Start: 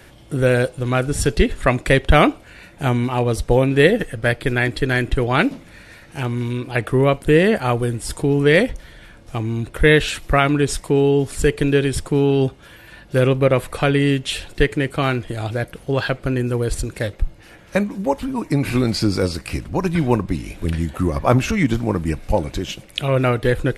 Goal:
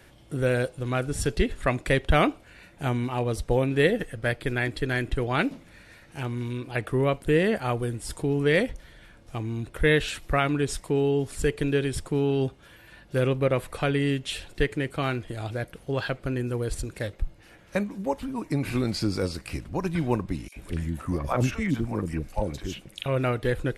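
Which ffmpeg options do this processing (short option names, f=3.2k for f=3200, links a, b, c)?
-filter_complex "[0:a]asettb=1/sr,asplit=3[a][b][c];[a]atrim=end=20.484[d];[b]atrim=start=20.48:end=23.06,asetpts=PTS-STARTPTS,afade=t=in:d=0.004:c=qsin,afade=t=out:st=2.576:d=0.004:c=qsin,acrossover=split=570|3600[e][f][g];[f]adelay=40[h];[e]adelay=80[i];[i][h][g]amix=inputs=3:normalize=0,atrim=end_sample=113778[j];[c]atrim=start=23.056[k];[d][j]acrossfade=d=0.004:c1=hsin:c2=qsin[l];[l][k]acrossfade=d=0.004:c1=qsin:c2=hsin,volume=-8dB"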